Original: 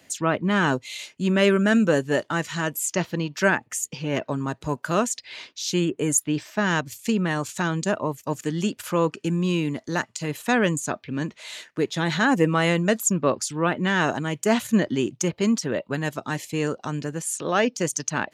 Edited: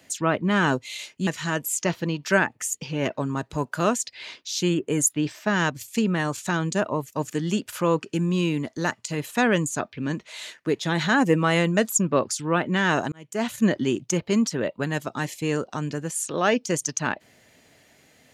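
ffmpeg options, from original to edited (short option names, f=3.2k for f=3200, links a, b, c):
-filter_complex "[0:a]asplit=3[a][b][c];[a]atrim=end=1.272[d];[b]atrim=start=2.378:end=14.23,asetpts=PTS-STARTPTS,afade=t=out:st=11.848:d=0.004:c=hsin[e];[c]atrim=start=14.23,asetpts=PTS-STARTPTS,afade=t=in:d=0.56[f];[e][f]concat=n=2:v=0:a=1[g];[d][g]acrossfade=d=0.004:c1=hsin:c2=hsin"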